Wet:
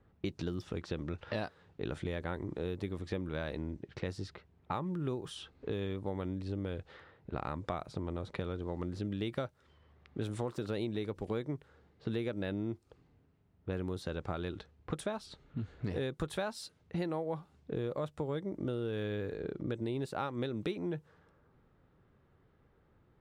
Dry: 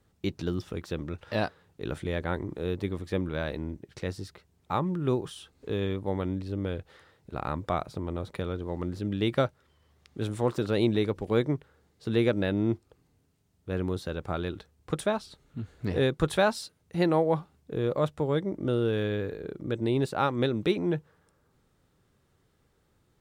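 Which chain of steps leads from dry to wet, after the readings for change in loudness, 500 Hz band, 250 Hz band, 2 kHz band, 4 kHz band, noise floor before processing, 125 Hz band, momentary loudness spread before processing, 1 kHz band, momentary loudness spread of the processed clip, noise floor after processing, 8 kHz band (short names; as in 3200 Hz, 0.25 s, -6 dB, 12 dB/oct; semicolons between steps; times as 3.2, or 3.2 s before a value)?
-8.5 dB, -9.0 dB, -8.0 dB, -9.0 dB, -8.5 dB, -69 dBFS, -7.5 dB, 11 LU, -9.5 dB, 7 LU, -69 dBFS, -7.0 dB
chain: low-pass opened by the level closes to 2000 Hz, open at -26.5 dBFS; compressor 6:1, threshold -35 dBFS, peak gain reduction 15.5 dB; gain +1.5 dB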